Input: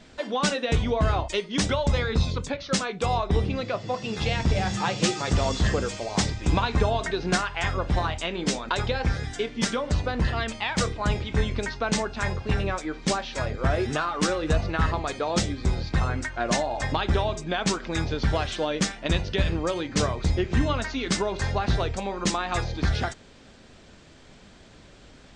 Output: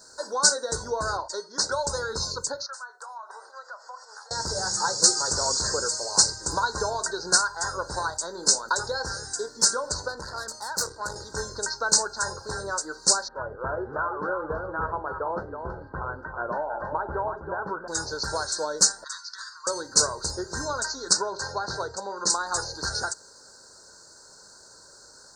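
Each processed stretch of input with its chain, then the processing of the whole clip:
1.17–1.72 LPF 4400 Hz + low shelf 250 Hz -9 dB
2.66–4.31 HPF 730 Hz 24 dB/oct + compressor 8:1, threshold -37 dBFS + resonant high shelf 2400 Hz -11.5 dB, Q 1.5
10.08–11.16 tube stage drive 22 dB, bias 0.65 + high shelf 5800 Hz -6 dB
13.28–17.88 LPF 1400 Hz 24 dB/oct + echo 0.323 s -7 dB
19.04–19.67 elliptic high-pass 1100 Hz + air absorption 72 m
21.13–22.3 HPF 84 Hz + air absorption 100 m
whole clip: Chebyshev band-stop 1600–4300 Hz, order 4; tilt +4.5 dB/oct; comb 2.1 ms, depth 47%

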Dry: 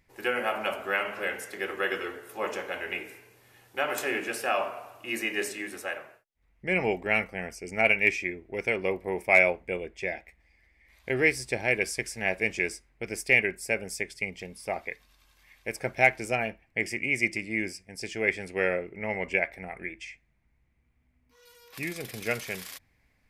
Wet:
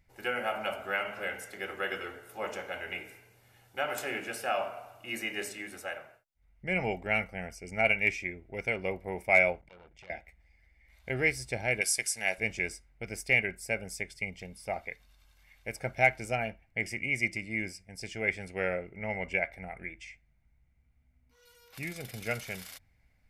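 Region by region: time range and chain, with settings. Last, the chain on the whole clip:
9.61–10.1 high shelf 7600 Hz -11 dB + compressor 8:1, threshold -41 dBFS + core saturation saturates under 2500 Hz
11.81–12.38 steep low-pass 12000 Hz 72 dB/oct + RIAA curve recording
whole clip: low shelf 170 Hz +6 dB; comb 1.4 ms, depth 36%; gain -5 dB

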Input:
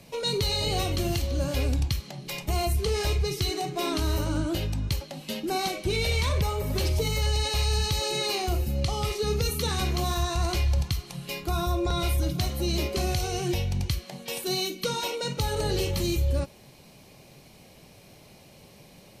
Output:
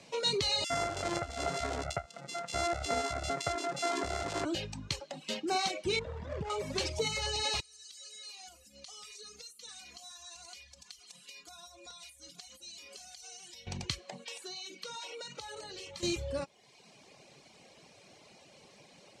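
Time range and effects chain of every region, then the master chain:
0.64–4.45 sample sorter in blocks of 64 samples + bands offset in time highs, lows 60 ms, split 2400 Hz
5.99–6.5 median filter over 41 samples + high shelf 5800 Hz -8.5 dB
7.6–13.67 pre-emphasis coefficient 0.9 + compressor 12:1, threshold -43 dBFS + comb 4.1 ms, depth 75%
14.24–16.03 low shelf 500 Hz -8.5 dB + compressor 16:1, threshold -36 dBFS
whole clip: HPF 430 Hz 6 dB/oct; reverb removal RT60 0.89 s; Chebyshev low-pass 7700 Hz, order 3

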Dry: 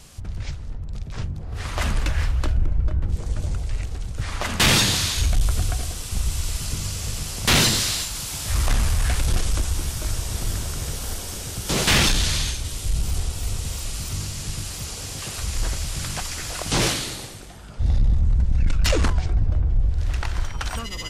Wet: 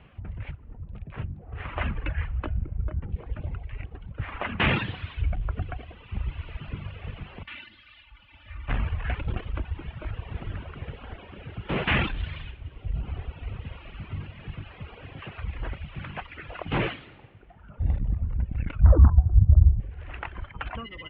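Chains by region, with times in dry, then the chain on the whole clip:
7.43–8.69 passive tone stack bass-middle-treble 5-5-5 + compressor 5:1, threshold -31 dBFS + comb 3.4 ms, depth 98%
18.81–19.8 inverse Chebyshev low-pass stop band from 2500 Hz + bell 74 Hz +14 dB 1.8 oct + notch 420 Hz, Q 5.8
whole clip: HPF 44 Hz; reverb removal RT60 1.7 s; steep low-pass 2900 Hz 48 dB/oct; gain -2.5 dB

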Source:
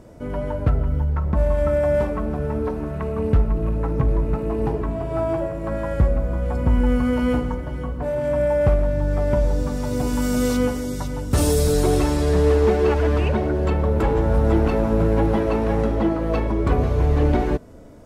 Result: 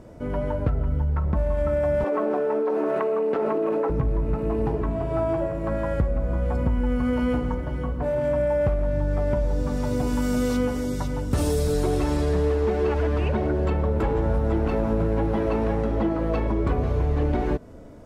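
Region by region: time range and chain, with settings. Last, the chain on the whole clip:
2.04–3.9 HPF 350 Hz 24 dB/oct + tilt -2 dB/oct + fast leveller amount 100%
whole clip: high shelf 5000 Hz -6 dB; compressor, threshold -19 dBFS

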